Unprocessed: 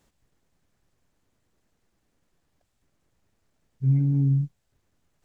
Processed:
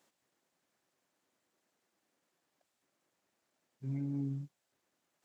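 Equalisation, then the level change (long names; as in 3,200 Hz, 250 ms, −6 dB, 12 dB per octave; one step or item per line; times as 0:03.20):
high-pass filter 320 Hz 12 dB per octave
notch filter 440 Hz, Q 12
−3.0 dB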